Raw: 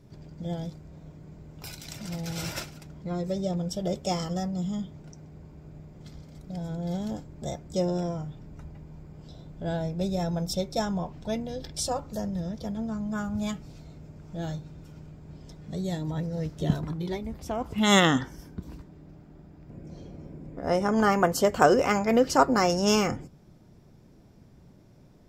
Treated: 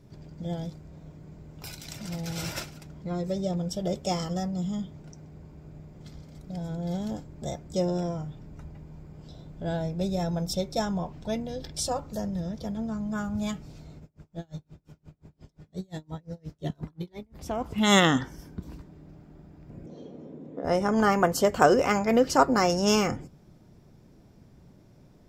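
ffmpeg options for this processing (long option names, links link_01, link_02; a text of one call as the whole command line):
ffmpeg -i in.wav -filter_complex "[0:a]asplit=3[link_01][link_02][link_03];[link_01]afade=type=out:start_time=13.99:duration=0.02[link_04];[link_02]aeval=exprs='val(0)*pow(10,-34*(0.5-0.5*cos(2*PI*5.7*n/s))/20)':channel_layout=same,afade=type=in:start_time=13.99:duration=0.02,afade=type=out:start_time=17.36:duration=0.02[link_05];[link_03]afade=type=in:start_time=17.36:duration=0.02[link_06];[link_04][link_05][link_06]amix=inputs=3:normalize=0,asettb=1/sr,asplit=3[link_07][link_08][link_09];[link_07]atrim=end=19.864[link_10];[link_08]atrim=start=19.86:end=20.65,asetpts=PTS-STARTPTS,afade=type=in:duration=0.004:curve=qsin,afade=type=out:start_time=0.786:duration=0.004:curve=qsin,highpass=200,equalizer=frequency=250:width_type=q:width=4:gain=6,equalizer=frequency=470:width_type=q:width=4:gain=8,equalizer=frequency=1500:width_type=q:width=4:gain=-4,equalizer=frequency=2300:width_type=q:width=4:gain=-7,equalizer=frequency=3500:width_type=q:width=4:gain=4,equalizer=frequency=4900:width_type=q:width=4:gain=-10,lowpass=frequency=6500:width=0.5412,lowpass=frequency=6500:width=1.3066[link_11];[link_09]atrim=start=20.646[link_12];[link_10][link_11]acrossfade=duration=0.004:curve1=hsin:curve2=qsin[link_13];[link_13][link_12]acrossfade=duration=0.004:curve1=qsin:curve2=hsin" out.wav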